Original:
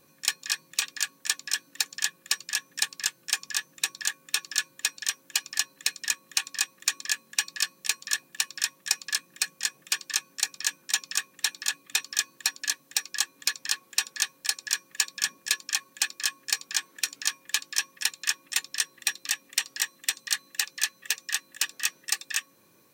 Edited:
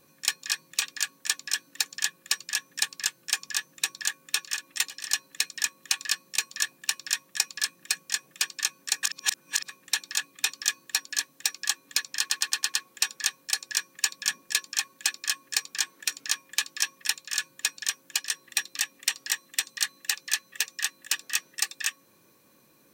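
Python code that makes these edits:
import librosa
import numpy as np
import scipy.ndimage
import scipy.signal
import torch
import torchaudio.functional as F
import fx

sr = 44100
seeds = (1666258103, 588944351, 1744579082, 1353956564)

y = fx.edit(x, sr, fx.swap(start_s=4.52, length_s=0.93, other_s=18.28, other_length_s=0.47, crossfade_s=0.24),
    fx.cut(start_s=6.51, length_s=1.05),
    fx.reverse_span(start_s=10.54, length_s=0.66),
    fx.stutter(start_s=13.7, slice_s=0.11, count=6), tone=tone)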